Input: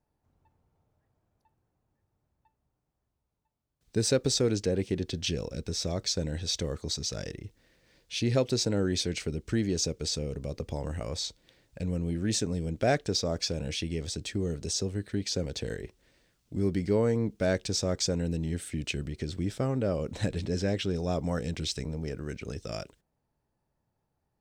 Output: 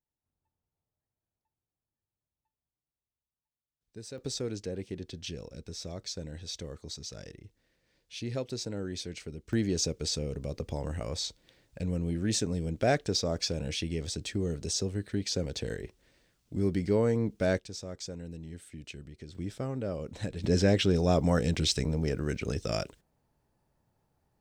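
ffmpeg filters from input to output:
-af "asetnsamples=n=441:p=0,asendcmd='4.18 volume volume -8.5dB;9.53 volume volume -0.5dB;17.59 volume volume -11.5dB;19.35 volume volume -5.5dB;20.44 volume volume 5dB',volume=-17.5dB"

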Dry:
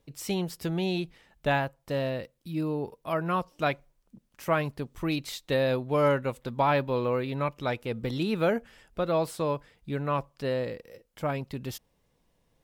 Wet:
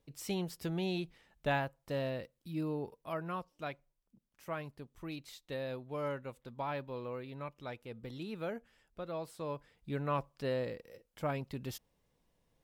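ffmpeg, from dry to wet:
-af "volume=2dB,afade=t=out:st=2.74:d=0.8:silence=0.421697,afade=t=in:st=9.33:d=0.62:silence=0.375837"

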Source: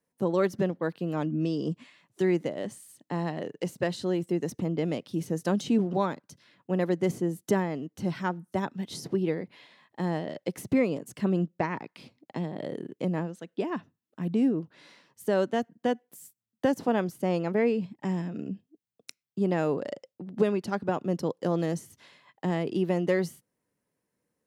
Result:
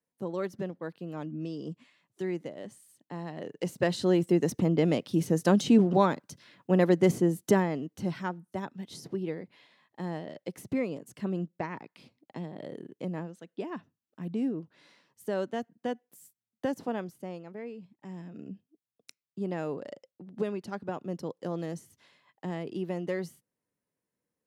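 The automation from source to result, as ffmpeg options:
-af "volume=13dB,afade=t=in:st=3.28:d=0.83:silence=0.251189,afade=t=out:st=7.17:d=1.26:silence=0.316228,afade=t=out:st=16.8:d=0.64:silence=0.316228,afade=t=in:st=17.99:d=0.52:silence=0.354813"

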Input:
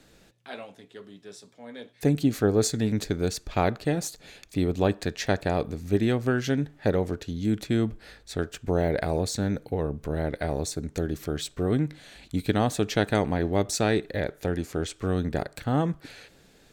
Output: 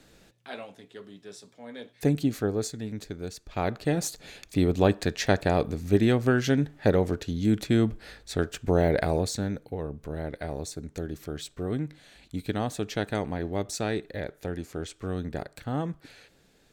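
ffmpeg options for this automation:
-af "volume=11.5dB,afade=t=out:st=1.94:d=0.81:silence=0.334965,afade=t=in:st=3.45:d=0.64:silence=0.266073,afade=t=out:st=9:d=0.6:silence=0.421697"

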